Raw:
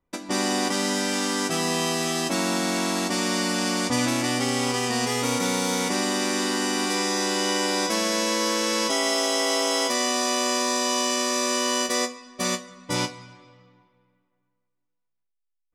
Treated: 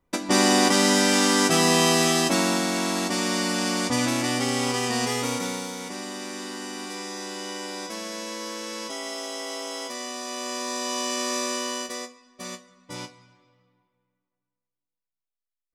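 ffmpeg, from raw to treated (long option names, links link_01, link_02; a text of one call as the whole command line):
ffmpeg -i in.wav -af "volume=13dB,afade=type=out:start_time=2:duration=0.69:silence=0.501187,afade=type=out:start_time=5.08:duration=0.65:silence=0.334965,afade=type=in:start_time=10.24:duration=1.1:silence=0.421697,afade=type=out:start_time=11.34:duration=0.7:silence=0.375837" out.wav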